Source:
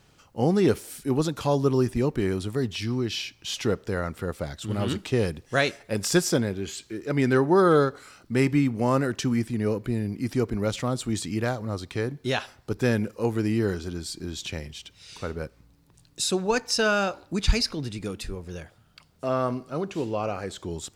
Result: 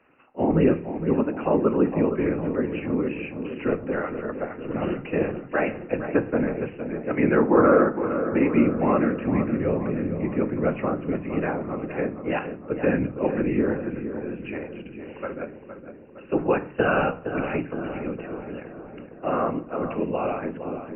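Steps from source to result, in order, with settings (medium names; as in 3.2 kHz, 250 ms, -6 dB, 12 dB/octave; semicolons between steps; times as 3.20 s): steep high-pass 190 Hz 96 dB/octave; de-esser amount 85%; Chebyshev low-pass 2.8 kHz, order 10; whisper effect; filtered feedback delay 463 ms, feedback 64%, low-pass 1.8 kHz, level -9 dB; on a send at -11 dB: reverberation RT60 0.45 s, pre-delay 4 ms; on the sum: trim +2 dB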